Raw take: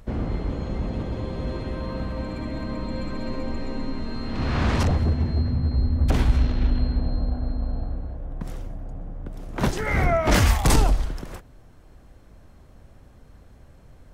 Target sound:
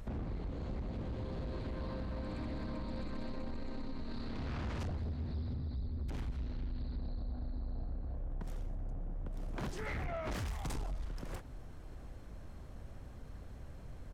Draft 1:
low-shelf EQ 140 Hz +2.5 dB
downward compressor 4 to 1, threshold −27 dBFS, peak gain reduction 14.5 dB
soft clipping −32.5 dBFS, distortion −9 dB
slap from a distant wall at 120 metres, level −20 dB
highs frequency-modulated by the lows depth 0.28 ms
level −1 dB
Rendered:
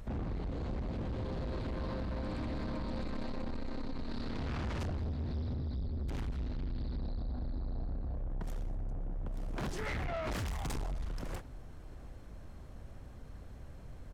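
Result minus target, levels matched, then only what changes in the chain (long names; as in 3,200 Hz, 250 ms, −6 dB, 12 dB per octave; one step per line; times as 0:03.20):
downward compressor: peak gain reduction −5.5 dB
change: downward compressor 4 to 1, threshold −34.5 dBFS, peak gain reduction 20 dB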